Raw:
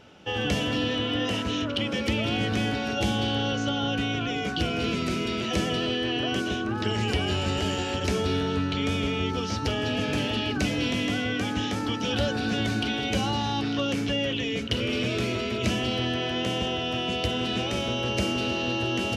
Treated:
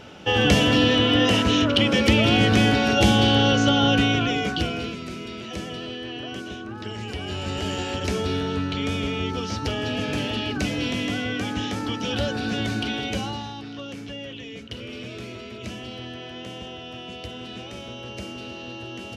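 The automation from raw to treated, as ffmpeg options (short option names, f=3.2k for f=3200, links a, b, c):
-af "volume=15.5dB,afade=t=out:st=3.95:d=0.69:silence=0.446684,afade=t=out:st=4.64:d=0.32:silence=0.398107,afade=t=in:st=7.14:d=0.66:silence=0.446684,afade=t=out:st=12.98:d=0.58:silence=0.334965"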